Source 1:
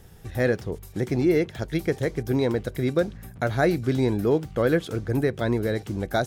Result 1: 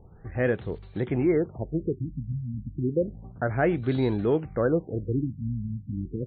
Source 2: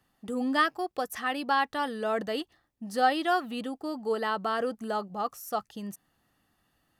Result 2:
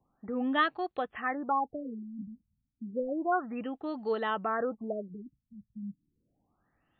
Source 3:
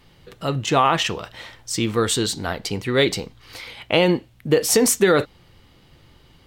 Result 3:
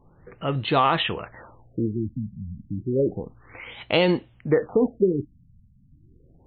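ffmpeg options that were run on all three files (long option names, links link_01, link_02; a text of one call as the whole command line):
ffmpeg -i in.wav -filter_complex "[0:a]asplit=2[link_01][link_02];[link_02]asoftclip=type=tanh:threshold=-19.5dB,volume=-11.5dB[link_03];[link_01][link_03]amix=inputs=2:normalize=0,afftfilt=real='re*lt(b*sr/1024,240*pow(4600/240,0.5+0.5*sin(2*PI*0.31*pts/sr)))':imag='im*lt(b*sr/1024,240*pow(4600/240,0.5+0.5*sin(2*PI*0.31*pts/sr)))':win_size=1024:overlap=0.75,volume=-3.5dB" out.wav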